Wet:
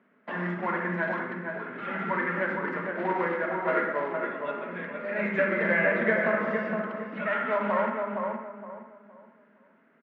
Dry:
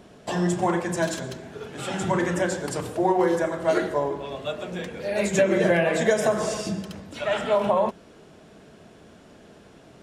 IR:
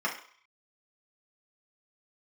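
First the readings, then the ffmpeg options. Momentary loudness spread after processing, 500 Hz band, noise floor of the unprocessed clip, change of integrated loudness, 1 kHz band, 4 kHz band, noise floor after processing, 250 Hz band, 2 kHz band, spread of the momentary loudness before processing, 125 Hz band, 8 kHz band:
11 LU, −5.5 dB, −51 dBFS, −4.0 dB, −2.0 dB, −14.5 dB, −63 dBFS, −5.5 dB, +3.5 dB, 12 LU, −7.5 dB, below −40 dB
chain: -filter_complex "[0:a]agate=range=-10dB:threshold=-44dB:ratio=16:detection=peak,acrusher=bits=3:mode=log:mix=0:aa=0.000001,highpass=frequency=220:width=0.5412,highpass=frequency=220:width=1.3066,equalizer=frequency=230:width_type=q:width=4:gain=5,equalizer=frequency=330:width_type=q:width=4:gain=-10,equalizer=frequency=490:width_type=q:width=4:gain=-4,equalizer=frequency=740:width_type=q:width=4:gain=-10,equalizer=frequency=1400:width_type=q:width=4:gain=6,equalizer=frequency=2000:width_type=q:width=4:gain=7,lowpass=frequency=2200:width=0.5412,lowpass=frequency=2200:width=1.3066,asplit=2[link_01][link_02];[link_02]adelay=465,lowpass=frequency=1600:poles=1,volume=-3.5dB,asplit=2[link_03][link_04];[link_04]adelay=465,lowpass=frequency=1600:poles=1,volume=0.32,asplit=2[link_05][link_06];[link_06]adelay=465,lowpass=frequency=1600:poles=1,volume=0.32,asplit=2[link_07][link_08];[link_08]adelay=465,lowpass=frequency=1600:poles=1,volume=0.32[link_09];[link_01][link_03][link_05][link_07][link_09]amix=inputs=5:normalize=0,asplit=2[link_10][link_11];[1:a]atrim=start_sample=2205,adelay=55[link_12];[link_11][link_12]afir=irnorm=-1:irlink=0,volume=-14.5dB[link_13];[link_10][link_13]amix=inputs=2:normalize=0,volume=-3dB"

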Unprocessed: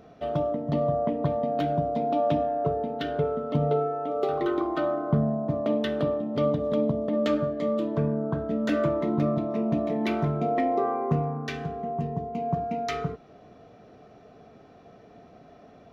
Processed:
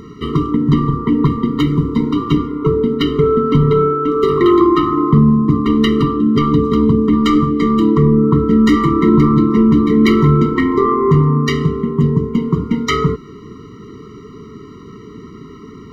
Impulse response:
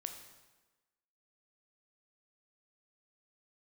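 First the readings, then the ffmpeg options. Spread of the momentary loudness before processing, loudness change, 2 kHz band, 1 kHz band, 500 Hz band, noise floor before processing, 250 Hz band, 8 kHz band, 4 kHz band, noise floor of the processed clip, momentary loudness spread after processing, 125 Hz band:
6 LU, +13.5 dB, +13.0 dB, +10.0 dB, +9.0 dB, −52 dBFS, +16.5 dB, can't be measured, +16.0 dB, −36 dBFS, 6 LU, +15.5 dB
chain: -af "apsyclip=23.5dB,afftfilt=real='re*eq(mod(floor(b*sr/1024/460),2),0)':imag='im*eq(mod(floor(b*sr/1024/460),2),0)':win_size=1024:overlap=0.75,volume=-4dB"

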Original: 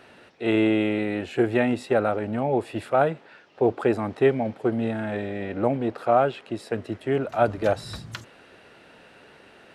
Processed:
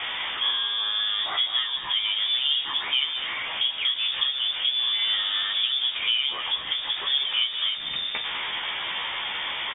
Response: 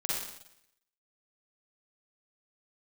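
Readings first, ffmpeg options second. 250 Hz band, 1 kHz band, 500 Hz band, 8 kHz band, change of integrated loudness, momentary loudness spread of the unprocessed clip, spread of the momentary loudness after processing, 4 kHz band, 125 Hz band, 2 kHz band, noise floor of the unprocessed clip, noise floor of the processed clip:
below −25 dB, −7.5 dB, −25.0 dB, can't be measured, +1.0 dB, 10 LU, 6 LU, +23.5 dB, below −25 dB, +3.5 dB, −52 dBFS, −33 dBFS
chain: -filter_complex "[0:a]aeval=exprs='val(0)+0.5*0.0447*sgn(val(0))':channel_layout=same,acompressor=threshold=-25dB:ratio=6,asplit=2[link_01][link_02];[link_02]adelay=14,volume=-3.5dB[link_03];[link_01][link_03]amix=inputs=2:normalize=0,aecho=1:1:202:0.282,asplit=2[link_04][link_05];[1:a]atrim=start_sample=2205,asetrate=79380,aresample=44100[link_06];[link_05][link_06]afir=irnorm=-1:irlink=0,volume=-16dB[link_07];[link_04][link_07]amix=inputs=2:normalize=0,lowpass=frequency=3100:width_type=q:width=0.5098,lowpass=frequency=3100:width_type=q:width=0.6013,lowpass=frequency=3100:width_type=q:width=0.9,lowpass=frequency=3100:width_type=q:width=2.563,afreqshift=-3700"

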